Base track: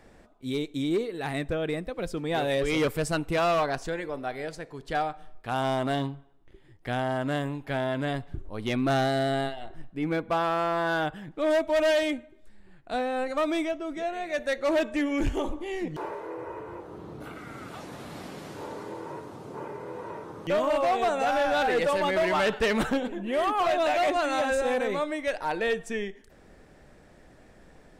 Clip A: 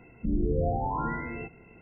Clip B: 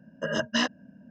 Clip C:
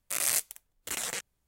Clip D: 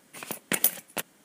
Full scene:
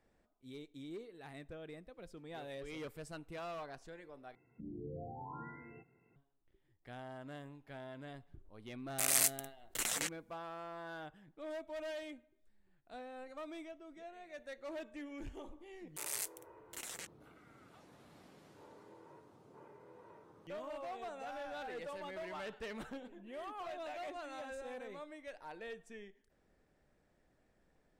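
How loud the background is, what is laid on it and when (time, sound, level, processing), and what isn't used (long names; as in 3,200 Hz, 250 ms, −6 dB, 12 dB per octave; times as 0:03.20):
base track −20 dB
0:04.35: overwrite with A −16 dB + loudspeaker in its box 130–2,300 Hz, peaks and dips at 130 Hz +6 dB, 200 Hz −4 dB, 600 Hz −6 dB
0:08.88: mix in C −2.5 dB + one scale factor per block 7 bits
0:15.86: mix in C −12.5 dB
not used: B, D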